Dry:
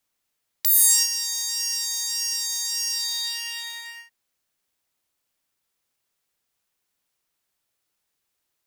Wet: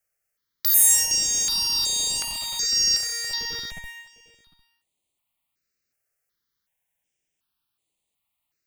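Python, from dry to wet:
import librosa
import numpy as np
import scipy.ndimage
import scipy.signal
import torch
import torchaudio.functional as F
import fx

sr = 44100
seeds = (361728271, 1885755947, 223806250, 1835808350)

p1 = fx.high_shelf(x, sr, hz=12000.0, db=-12.0, at=(2.31, 3.84))
p2 = fx.schmitt(p1, sr, flips_db=-29.0)
p3 = p1 + (p2 * 10.0 ** (-7.5 / 20.0))
p4 = fx.dynamic_eq(p3, sr, hz=5000.0, q=0.93, threshold_db=-33.0, ratio=4.0, max_db=8)
p5 = p4 + fx.echo_single(p4, sr, ms=753, db=-23.0, dry=0)
y = fx.phaser_held(p5, sr, hz=2.7, low_hz=980.0, high_hz=5400.0)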